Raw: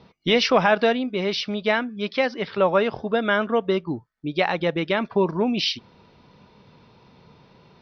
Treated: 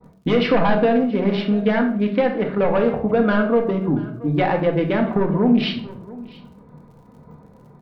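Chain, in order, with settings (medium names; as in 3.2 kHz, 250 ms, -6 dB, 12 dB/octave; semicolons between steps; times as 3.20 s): local Wiener filter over 15 samples; expander -48 dBFS; sine folder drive 7 dB, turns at -5.5 dBFS; distance through air 420 m; on a send: delay 679 ms -23.5 dB; on the sum: crackle 44 per s -45 dBFS; compression, threshold -14 dBFS, peak gain reduction 5.5 dB; simulated room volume 770 m³, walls furnished, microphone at 1.9 m; trim -3 dB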